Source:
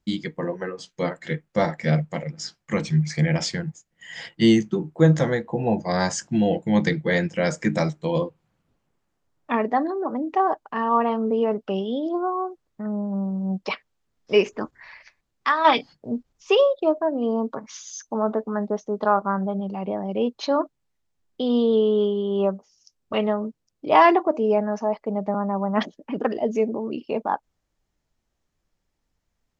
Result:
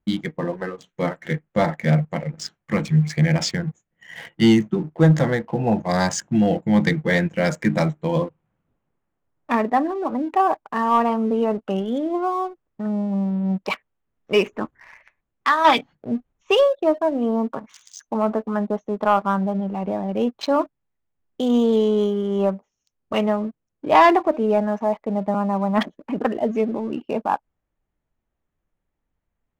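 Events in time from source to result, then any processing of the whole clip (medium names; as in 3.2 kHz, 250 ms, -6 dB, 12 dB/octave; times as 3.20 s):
21.42–22.23 s: peaking EQ 1.3 kHz +2.5 dB 1.8 oct
whole clip: local Wiener filter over 9 samples; dynamic bell 430 Hz, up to -4 dB, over -35 dBFS, Q 2; waveshaping leveller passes 1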